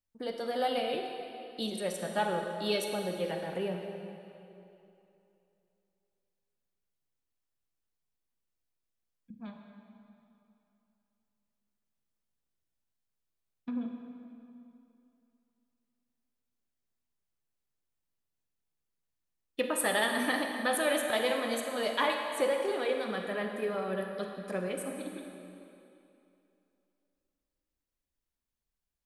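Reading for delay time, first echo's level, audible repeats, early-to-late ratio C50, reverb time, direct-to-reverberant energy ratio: no echo audible, no echo audible, no echo audible, 3.5 dB, 2.8 s, 3.0 dB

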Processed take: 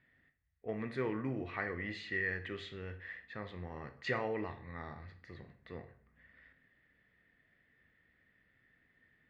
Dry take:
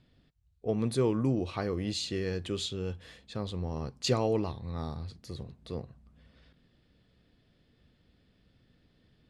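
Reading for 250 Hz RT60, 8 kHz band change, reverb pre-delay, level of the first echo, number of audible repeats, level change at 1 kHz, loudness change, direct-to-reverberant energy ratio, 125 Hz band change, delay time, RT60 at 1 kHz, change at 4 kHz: 0.55 s, below −20 dB, 16 ms, no echo audible, no echo audible, −4.5 dB, −7.0 dB, 8.0 dB, −11.5 dB, no echo audible, 0.50 s, −13.5 dB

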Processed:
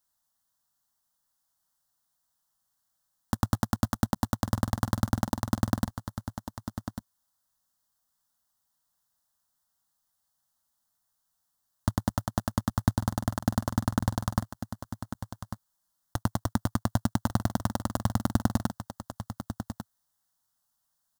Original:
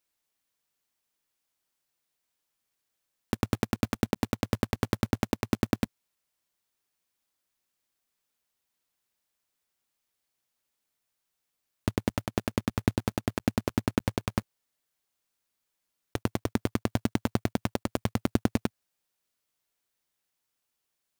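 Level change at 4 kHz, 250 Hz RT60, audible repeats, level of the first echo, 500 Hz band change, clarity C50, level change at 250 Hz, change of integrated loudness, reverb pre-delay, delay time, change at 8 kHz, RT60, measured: −1.0 dB, no reverb audible, 1, −10.5 dB, −4.5 dB, no reverb audible, 0.0 dB, 0.0 dB, no reverb audible, 1,147 ms, +3.5 dB, no reverb audible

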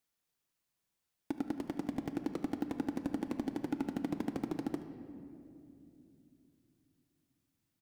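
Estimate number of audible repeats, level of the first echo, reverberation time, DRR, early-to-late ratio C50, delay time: 1, −17.0 dB, 2.8 s, 7.5 dB, 8.5 dB, 75 ms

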